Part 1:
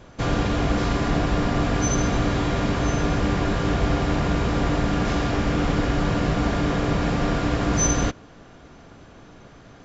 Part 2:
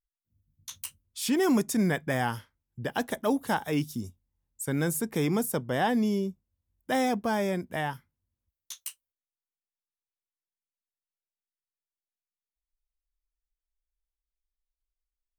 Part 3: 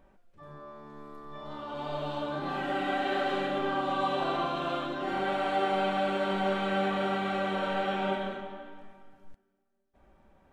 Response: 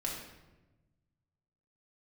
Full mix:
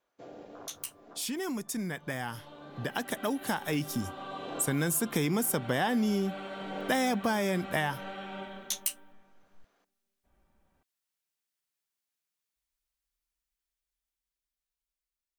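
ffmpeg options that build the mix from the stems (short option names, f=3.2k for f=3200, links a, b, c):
-filter_complex "[0:a]afwtdn=0.0794,highpass=480,alimiter=level_in=0.5dB:limit=-24dB:level=0:latency=1:release=307,volume=-0.5dB,volume=-13dB[a];[1:a]highpass=f=140:p=1,volume=1dB,asplit=2[b][c];[2:a]adelay=300,volume=-15.5dB[d];[c]apad=whole_len=434176[e];[a][e]sidechaincompress=threshold=-47dB:ratio=4:attack=29:release=477[f];[b][d]amix=inputs=2:normalize=0,equalizer=f=520:w=0.55:g=-5,acompressor=threshold=-33dB:ratio=6,volume=0dB[g];[f][g]amix=inputs=2:normalize=0,dynaudnorm=f=950:g=7:m=8dB"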